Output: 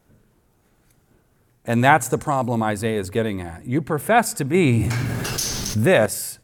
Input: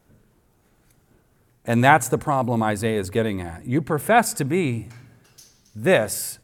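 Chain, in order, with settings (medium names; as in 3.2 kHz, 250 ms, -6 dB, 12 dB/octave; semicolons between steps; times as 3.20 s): 2.09–2.56 s: peaking EQ 6.5 kHz +8 dB 0.97 oct; 4.54–6.06 s: level flattener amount 70%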